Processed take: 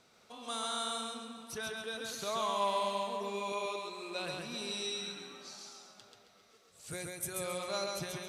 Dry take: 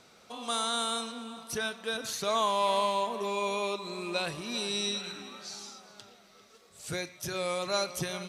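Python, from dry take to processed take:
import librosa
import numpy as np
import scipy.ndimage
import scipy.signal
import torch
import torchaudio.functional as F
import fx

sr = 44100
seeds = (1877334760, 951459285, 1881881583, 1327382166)

y = fx.highpass(x, sr, hz=290.0, slope=12, at=(3.52, 4.19))
y = fx.high_shelf_res(y, sr, hz=6800.0, db=8.5, q=3.0, at=(6.91, 7.44))
y = fx.echo_feedback(y, sr, ms=135, feedback_pct=31, wet_db=-3)
y = y * librosa.db_to_amplitude(-7.5)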